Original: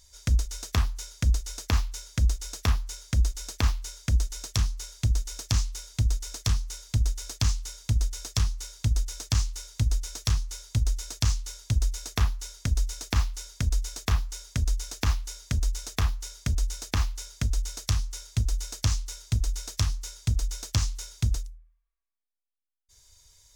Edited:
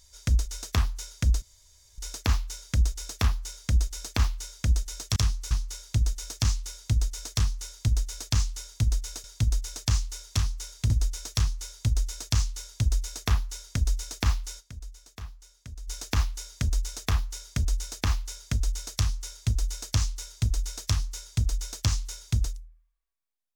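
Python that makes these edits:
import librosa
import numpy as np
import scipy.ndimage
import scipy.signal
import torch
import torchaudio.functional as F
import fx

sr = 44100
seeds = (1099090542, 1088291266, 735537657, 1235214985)

y = fx.edit(x, sr, fx.insert_room_tone(at_s=1.42, length_s=0.56),
    fx.move(start_s=8.33, length_s=0.35, to_s=4.6),
    fx.fade_down_up(start_s=13.49, length_s=1.3, db=-15.5, fade_s=0.15, curve='exp'),
    fx.duplicate(start_s=17.89, length_s=0.54, to_s=9.8), tone=tone)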